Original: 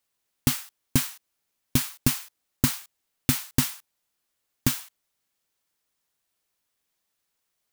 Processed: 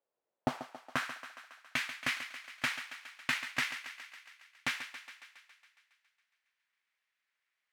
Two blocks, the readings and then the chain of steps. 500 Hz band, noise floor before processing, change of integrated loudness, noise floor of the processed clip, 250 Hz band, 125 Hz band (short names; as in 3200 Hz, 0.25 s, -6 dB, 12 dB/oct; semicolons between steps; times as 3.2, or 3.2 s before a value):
-4.0 dB, -79 dBFS, -10.0 dB, under -85 dBFS, -15.5 dB, -22.0 dB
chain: half-waves squared off; band-pass sweep 530 Hz -> 2000 Hz, 0.32–1.21; thinning echo 0.138 s, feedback 68%, high-pass 330 Hz, level -10.5 dB